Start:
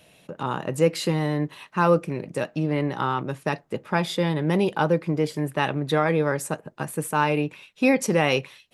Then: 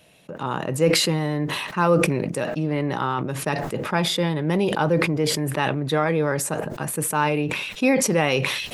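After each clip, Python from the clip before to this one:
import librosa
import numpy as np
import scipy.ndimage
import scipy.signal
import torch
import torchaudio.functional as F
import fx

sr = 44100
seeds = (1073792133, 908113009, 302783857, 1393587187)

y = fx.sustainer(x, sr, db_per_s=35.0)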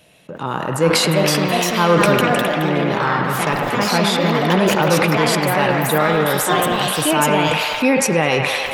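y = fx.echo_wet_bandpass(x, sr, ms=103, feedback_pct=82, hz=1300.0, wet_db=-4.5)
y = fx.echo_pitch(y, sr, ms=476, semitones=3, count=2, db_per_echo=-3.0)
y = y * librosa.db_to_amplitude(3.0)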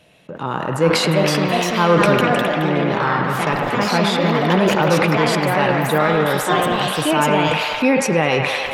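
y = fx.high_shelf(x, sr, hz=6900.0, db=-10.5)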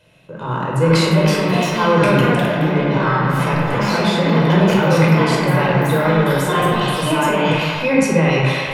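y = fx.room_shoebox(x, sr, seeds[0], volume_m3=1900.0, walls='furnished', distance_m=5.0)
y = y * librosa.db_to_amplitude(-5.5)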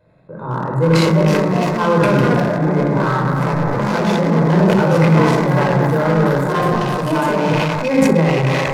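y = fx.wiener(x, sr, points=15)
y = fx.sustainer(y, sr, db_per_s=22.0)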